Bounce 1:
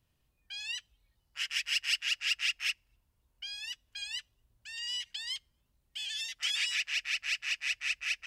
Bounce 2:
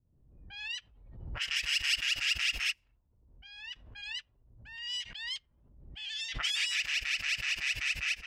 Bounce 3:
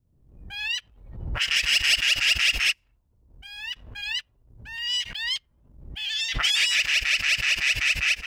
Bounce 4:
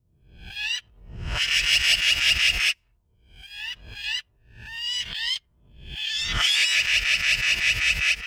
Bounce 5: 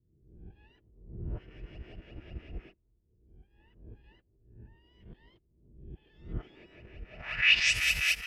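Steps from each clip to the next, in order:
level-controlled noise filter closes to 380 Hz, open at -31 dBFS; swell ahead of each attack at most 56 dB/s
waveshaping leveller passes 1; trim +6.5 dB
reverse spectral sustain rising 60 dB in 0.40 s; comb of notches 270 Hz
block-companded coder 5-bit; low-pass sweep 360 Hz -> 12 kHz, 7.07–7.80 s; trim -6 dB

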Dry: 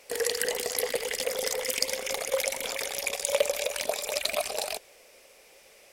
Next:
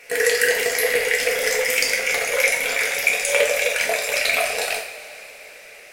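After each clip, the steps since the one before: high-order bell 1.9 kHz +10.5 dB 1.1 oct; two-slope reverb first 0.5 s, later 4.4 s, from -20 dB, DRR -2 dB; trim +2 dB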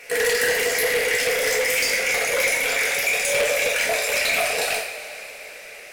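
saturation -19.5 dBFS, distortion -10 dB; trim +3 dB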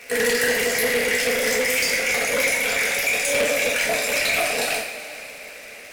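octave divider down 1 oct, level -2 dB; crackle 190 per s -32 dBFS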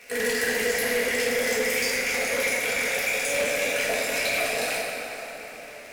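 plate-style reverb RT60 4.4 s, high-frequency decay 0.45×, pre-delay 0 ms, DRR 1 dB; trim -6.5 dB

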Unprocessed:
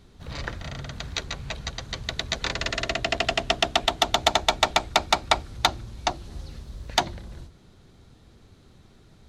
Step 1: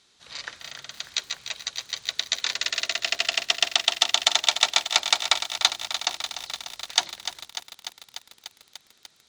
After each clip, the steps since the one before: frequency weighting ITU-R 468; bit-crushed delay 296 ms, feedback 80%, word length 6-bit, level -10 dB; trim -6.5 dB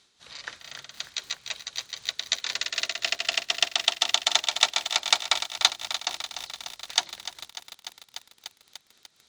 tremolo 3.9 Hz, depth 49%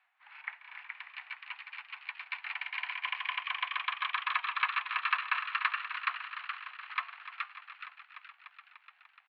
flange 0.51 Hz, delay 3.2 ms, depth 5.1 ms, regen -89%; mistuned SSB +350 Hz 420–2200 Hz; frequency-shifting echo 422 ms, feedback 36%, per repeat +100 Hz, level -4 dB; trim +3.5 dB

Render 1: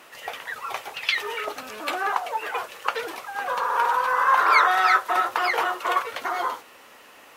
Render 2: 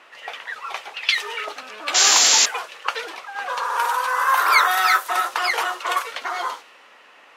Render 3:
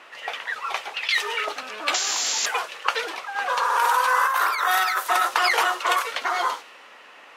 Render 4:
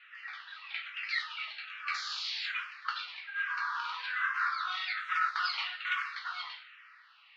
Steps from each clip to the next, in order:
painted sound noise, 1.94–2.46 s, 220–7500 Hz -22 dBFS; level-controlled noise filter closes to 2.4 kHz, open at -16 dBFS; RIAA curve recording
compressor with a negative ratio -21 dBFS, ratio -1
Chebyshev band-pass 1.3–4.5 kHz, order 3; simulated room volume 40 m³, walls mixed, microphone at 0.63 m; barber-pole phaser -1.2 Hz; trim -8.5 dB

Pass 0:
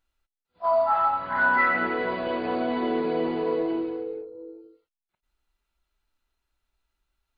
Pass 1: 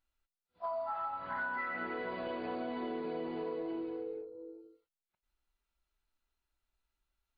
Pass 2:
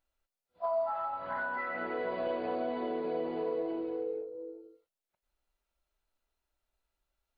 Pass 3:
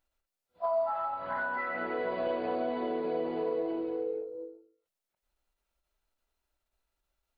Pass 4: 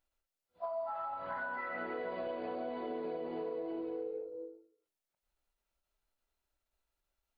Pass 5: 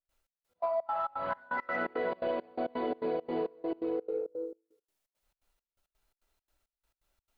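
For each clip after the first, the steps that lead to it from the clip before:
compression 6:1, threshold -28 dBFS, peak gain reduction 10 dB; trim -7 dB
peaking EQ 580 Hz +8.5 dB 0.9 oct
endings held to a fixed fall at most 110 dB/s; trim +2 dB
compression, threshold -32 dBFS, peak gain reduction 6.5 dB; flange 0.67 Hz, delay 9.3 ms, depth 3.5 ms, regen -85%; trim +1 dB
in parallel at -11.5 dB: saturation -37 dBFS, distortion -15 dB; on the sum: trance gate ".xx..x.xx.xx" 169 bpm -24 dB; trim +6 dB

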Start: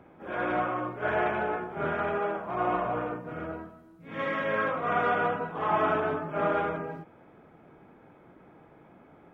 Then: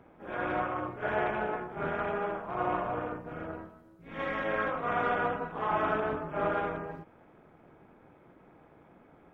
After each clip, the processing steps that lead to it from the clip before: AM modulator 220 Hz, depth 50%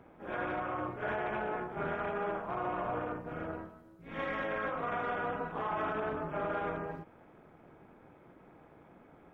peak limiter -25.5 dBFS, peak gain reduction 10 dB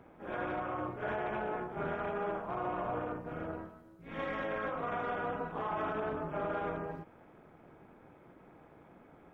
dynamic bell 1.9 kHz, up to -3 dB, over -47 dBFS, Q 0.86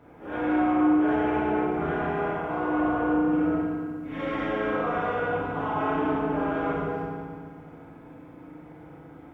FDN reverb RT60 1.8 s, low-frequency decay 1.55×, high-frequency decay 0.95×, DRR -7.5 dB

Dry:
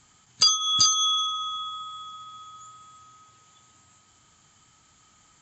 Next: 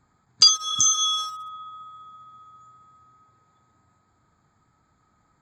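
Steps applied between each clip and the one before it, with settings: local Wiener filter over 15 samples; spectral replace 0.72–0.95 s, 310–5100 Hz; dynamic bell 5.3 kHz, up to +7 dB, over -36 dBFS, Q 0.99; trim -1 dB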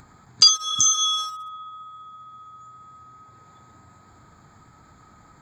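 upward compressor, threshold -40 dBFS; trim +1 dB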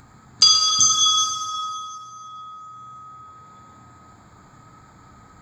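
plate-style reverb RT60 3 s, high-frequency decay 0.7×, DRR -0.5 dB

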